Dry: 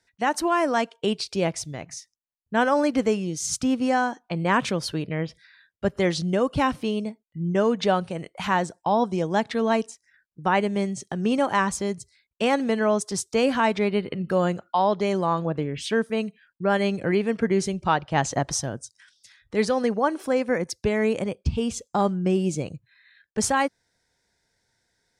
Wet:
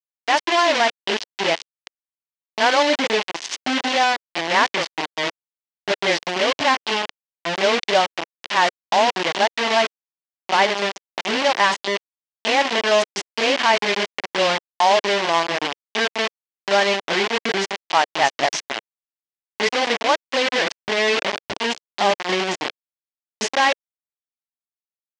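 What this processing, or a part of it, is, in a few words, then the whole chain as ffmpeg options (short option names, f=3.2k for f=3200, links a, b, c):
hand-held game console: -filter_complex "[0:a]asettb=1/sr,asplit=3[a][b][c];[a]atrim=end=17.604[d];[b]atrim=start=17.6:end=18.24,asetpts=PTS-STARTPTS,afade=t=in:d=0.004:c=qsin,afade=t=out:st=0.636:d=0.004:c=qsin,highpass=f=80:p=1[e];[c]atrim=start=18.236[f];[d][e]acrossfade=d=0.004:c1=hsin:c2=qsin[g];[g][f]acrossfade=d=0.004:c1=qsin:c2=hsin,acrossover=split=380|3400[h][i][j];[h]adelay=30[k];[i]adelay=60[l];[k][l][j]amix=inputs=3:normalize=0,adynamicequalizer=threshold=0.0126:dfrequency=540:dqfactor=2.2:tfrequency=540:tqfactor=2.2:attack=5:release=100:ratio=0.375:range=2.5:mode=boostabove:tftype=bell,acrusher=bits=3:mix=0:aa=0.000001,highpass=410,equalizer=f=500:t=q:w=4:g=-7,equalizer=f=1.3k:t=q:w=4:g=-5,equalizer=f=2k:t=q:w=4:g=3,equalizer=f=3k:t=q:w=4:g=4,lowpass=f=5.6k:w=0.5412,lowpass=f=5.6k:w=1.3066,volume=5.5dB"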